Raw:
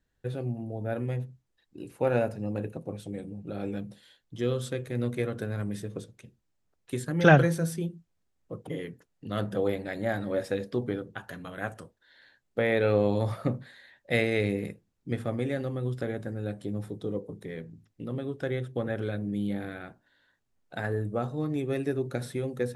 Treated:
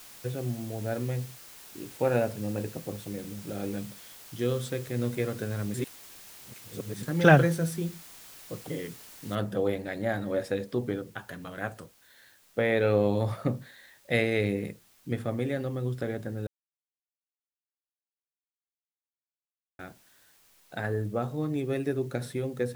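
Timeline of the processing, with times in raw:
5.74–7.03 s: reverse
9.35 s: noise floor step -49 dB -62 dB
16.47–19.79 s: mute

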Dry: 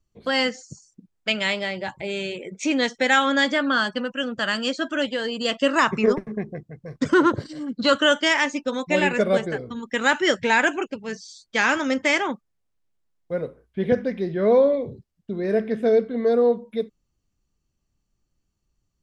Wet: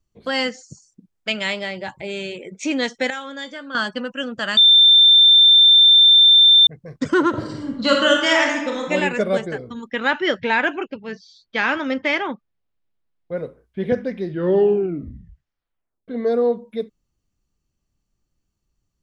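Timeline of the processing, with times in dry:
3.10–3.75 s: feedback comb 510 Hz, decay 0.21 s, mix 80%
4.57–6.67 s: bleep 3.57 kHz -7.5 dBFS
7.29–8.87 s: reverb throw, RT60 1 s, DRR 0 dB
9.88–13.37 s: low-pass 4.4 kHz 24 dB/octave
14.23 s: tape stop 1.85 s

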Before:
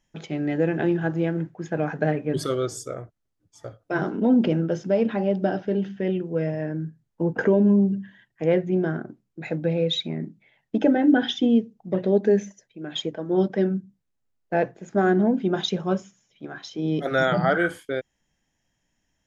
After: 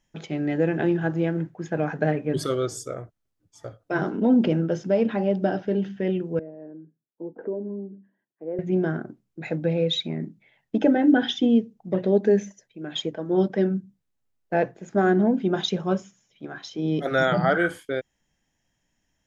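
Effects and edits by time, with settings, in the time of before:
6.39–8.59 s: ladder band-pass 420 Hz, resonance 25%

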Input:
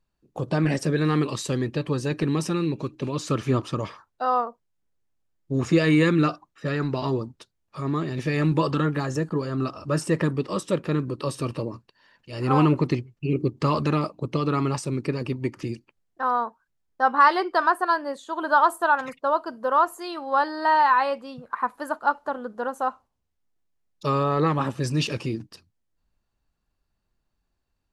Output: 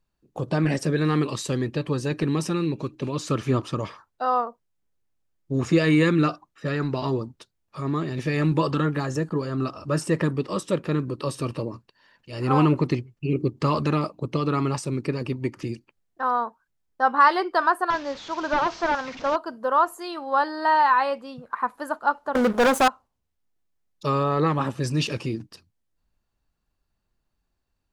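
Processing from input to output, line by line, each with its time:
17.90–19.36 s: one-bit delta coder 32 kbps, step -34 dBFS
22.35–22.88 s: waveshaping leveller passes 5

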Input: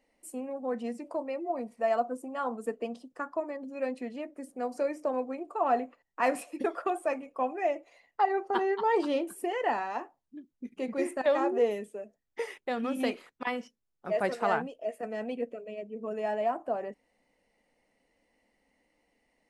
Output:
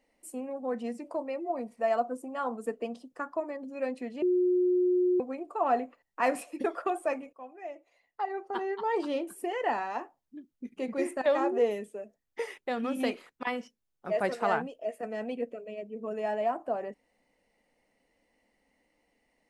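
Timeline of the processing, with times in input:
4.22–5.20 s: bleep 361 Hz -22 dBFS
7.33–9.84 s: fade in, from -17.5 dB

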